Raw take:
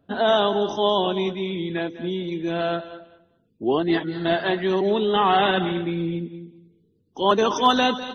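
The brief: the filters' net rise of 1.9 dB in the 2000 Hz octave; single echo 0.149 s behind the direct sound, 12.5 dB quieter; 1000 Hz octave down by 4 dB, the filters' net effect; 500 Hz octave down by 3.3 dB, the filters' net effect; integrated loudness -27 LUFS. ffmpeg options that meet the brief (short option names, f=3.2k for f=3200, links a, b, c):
-af "equalizer=f=500:t=o:g=-3.5,equalizer=f=1k:t=o:g=-5,equalizer=f=2k:t=o:g=5,aecho=1:1:149:0.237,volume=-3dB"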